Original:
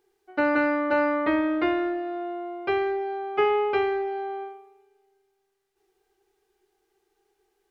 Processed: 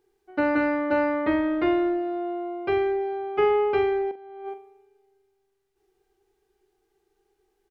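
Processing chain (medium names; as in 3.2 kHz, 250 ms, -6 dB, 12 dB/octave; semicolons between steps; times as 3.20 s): bass shelf 320 Hz +9.5 dB; 4.11–4.54 s: compressor with a negative ratio -35 dBFS, ratio -0.5; doubling 43 ms -11 dB; trim -3 dB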